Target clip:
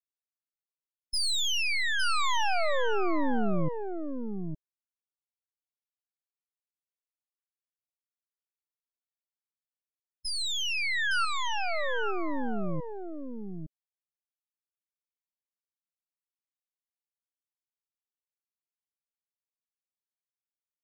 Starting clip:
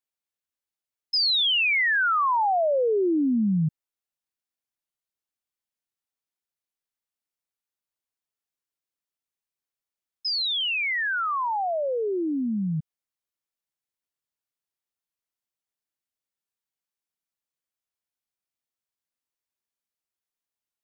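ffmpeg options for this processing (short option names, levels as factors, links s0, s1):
-filter_complex "[0:a]aeval=exprs='max(val(0),0)':c=same,asettb=1/sr,asplit=3[s0][s1][s2];[s0]atrim=end=10.384[s3];[s1]atrim=start=10.38:end=11.25,asetpts=PTS-STARTPTS,afade=t=in:d=0.004:c=qsin,afade=t=out:st=0.866:d=0.004:c=qsin,equalizer=f=740:w=0.5:g=10[s4];[s2]atrim=start=11.246[s5];[s3][s4]acrossfade=d=0.004:c1=hsin:c2=qsin[s6];[s6][s5]acrossfade=d=0.004:c1=qsin:c2=hsin,acrusher=bits=8:mix=0:aa=0.000001,asplit=2[s7][s8];[s8]aecho=0:1:861:0.501[s9];[s7][s9]amix=inputs=2:normalize=0,afftdn=nr=19:nf=-43,volume=0.794"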